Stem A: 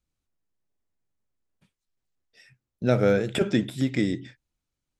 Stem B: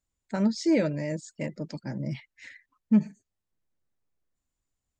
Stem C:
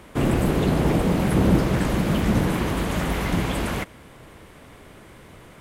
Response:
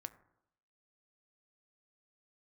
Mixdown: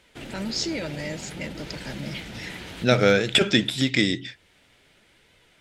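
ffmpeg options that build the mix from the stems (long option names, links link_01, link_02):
-filter_complex "[0:a]volume=0.5dB,asplit=2[link_01][link_02];[1:a]alimiter=limit=-22.5dB:level=0:latency=1,volume=-2.5dB[link_03];[2:a]equalizer=frequency=1100:width=7.4:gain=-12,alimiter=limit=-13.5dB:level=0:latency=1:release=41,flanger=delay=1.9:depth=9:regen=65:speed=0.56:shape=sinusoidal,volume=-13.5dB[link_04];[link_02]apad=whole_len=247336[link_05];[link_04][link_05]sidechaincompress=threshold=-30dB:ratio=8:attack=10:release=466[link_06];[link_01][link_03][link_06]amix=inputs=3:normalize=0,equalizer=frequency=3800:width=0.46:gain=14.5"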